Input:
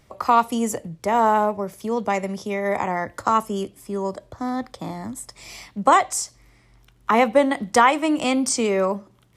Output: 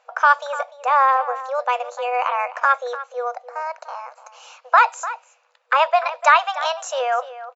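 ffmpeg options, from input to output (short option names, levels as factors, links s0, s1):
-filter_complex "[0:a]acrossover=split=690[s0][s1];[s0]alimiter=limit=0.0944:level=0:latency=1[s2];[s1]tiltshelf=f=1200:g=10[s3];[s2][s3]amix=inputs=2:normalize=0,asplit=2[s4][s5];[s5]adelay=367.3,volume=0.2,highshelf=f=4000:g=-8.27[s6];[s4][s6]amix=inputs=2:normalize=0,asetrate=54684,aresample=44100,afftfilt=real='re*between(b*sr/4096,480,7600)':imag='im*between(b*sr/4096,480,7600)':win_size=4096:overlap=0.75,adynamicequalizer=threshold=0.0355:dfrequency=1900:dqfactor=0.7:tfrequency=1900:tqfactor=0.7:attack=5:release=100:ratio=0.375:range=2:mode=boostabove:tftype=highshelf,volume=1.26"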